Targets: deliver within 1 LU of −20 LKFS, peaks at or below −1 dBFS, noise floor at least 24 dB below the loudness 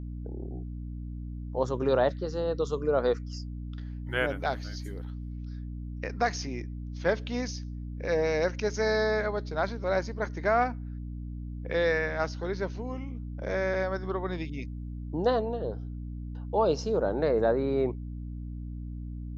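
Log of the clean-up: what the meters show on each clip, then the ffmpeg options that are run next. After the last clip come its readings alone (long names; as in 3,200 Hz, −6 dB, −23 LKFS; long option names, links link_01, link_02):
mains hum 60 Hz; hum harmonics up to 300 Hz; level of the hum −35 dBFS; integrated loudness −31.0 LKFS; sample peak −13.5 dBFS; target loudness −20.0 LKFS
→ -af "bandreject=frequency=60:width_type=h:width=6,bandreject=frequency=120:width_type=h:width=6,bandreject=frequency=180:width_type=h:width=6,bandreject=frequency=240:width_type=h:width=6,bandreject=frequency=300:width_type=h:width=6"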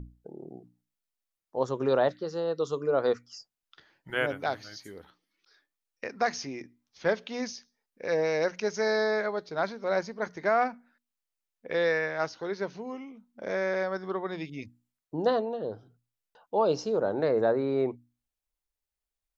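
mains hum none found; integrated loudness −30.0 LKFS; sample peak −13.5 dBFS; target loudness −20.0 LKFS
→ -af "volume=10dB"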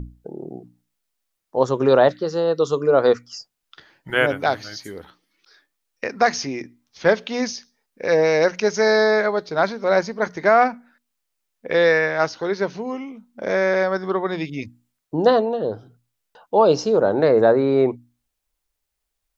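integrated loudness −20.0 LKFS; sample peak −3.5 dBFS; background noise floor −79 dBFS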